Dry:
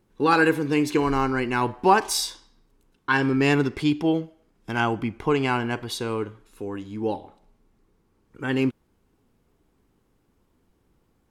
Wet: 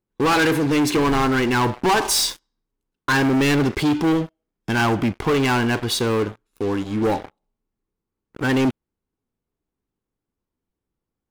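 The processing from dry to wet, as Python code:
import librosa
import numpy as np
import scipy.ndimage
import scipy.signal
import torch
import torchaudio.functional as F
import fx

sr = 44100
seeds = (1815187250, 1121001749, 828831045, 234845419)

y = fx.leveller(x, sr, passes=5)
y = F.gain(torch.from_numpy(y), -8.0).numpy()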